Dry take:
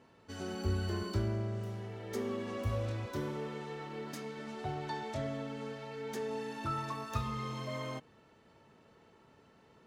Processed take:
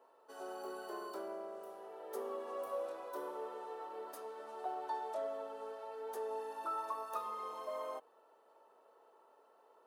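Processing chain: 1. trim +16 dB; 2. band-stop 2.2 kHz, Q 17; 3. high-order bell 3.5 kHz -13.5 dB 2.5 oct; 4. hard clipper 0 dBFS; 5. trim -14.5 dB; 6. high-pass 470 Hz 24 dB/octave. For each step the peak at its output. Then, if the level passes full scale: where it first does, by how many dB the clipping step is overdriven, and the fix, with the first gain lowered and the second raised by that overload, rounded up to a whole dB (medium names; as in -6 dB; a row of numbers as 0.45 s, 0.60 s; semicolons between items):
-5.0 dBFS, -5.0 dBFS, -5.0 dBFS, -5.0 dBFS, -19.5 dBFS, -26.5 dBFS; nothing clips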